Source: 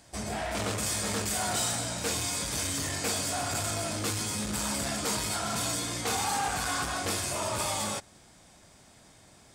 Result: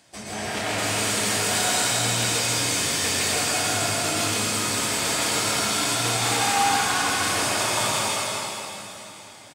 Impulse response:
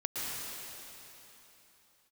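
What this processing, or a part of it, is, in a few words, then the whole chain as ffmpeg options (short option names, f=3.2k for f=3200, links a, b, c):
PA in a hall: -filter_complex "[0:a]highpass=130,equalizer=f=2.8k:t=o:w=1.5:g=5,aecho=1:1:161:0.631[a];[1:a]atrim=start_sample=2205[b];[a][b]afir=irnorm=-1:irlink=0"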